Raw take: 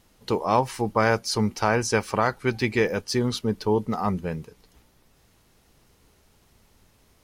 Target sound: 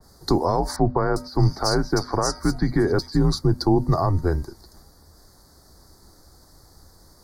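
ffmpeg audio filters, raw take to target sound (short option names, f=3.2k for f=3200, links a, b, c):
-filter_complex "[0:a]equalizer=f=4.7k:t=o:w=0.24:g=11,bandreject=f=336.8:t=h:w=4,bandreject=f=673.6:t=h:w=4,bandreject=f=1.0104k:t=h:w=4,bandreject=f=1.3472k:t=h:w=4,bandreject=f=1.684k:t=h:w=4,bandreject=f=2.0208k:t=h:w=4,bandreject=f=2.3576k:t=h:w=4,bandreject=f=2.6944k:t=h:w=4,alimiter=limit=-16.5dB:level=0:latency=1:release=109,acrossover=split=410[a][b];[b]acompressor=threshold=-28dB:ratio=3[c];[a][c]amix=inputs=2:normalize=0,afreqshift=-88,asuperstop=centerf=2700:order=4:qfactor=0.92,asettb=1/sr,asplit=3[d][e][f];[d]atrim=end=0.764[g];[e]atrim=start=0.76:end=3.17,asetpts=PTS-STARTPTS,afade=t=in:d=0.004:c=qsin,afade=t=out:st=2.406:d=0.004:c=qsin,acrossover=split=3400[h][i];[i]adelay=400[j];[h][j]amix=inputs=2:normalize=0,atrim=end_sample=106281[k];[f]atrim=start=3.166[l];[g][k]acrossfade=d=0.004:c1=hsin:c2=qsin[m];[m][l]acrossfade=d=0.004:c1=qsin:c2=hsin,adynamicequalizer=threshold=0.00501:dfrequency=2300:dqfactor=0.7:tfrequency=2300:tqfactor=0.7:attack=5:release=100:ratio=0.375:range=2.5:mode=cutabove:tftype=highshelf,volume=8.5dB"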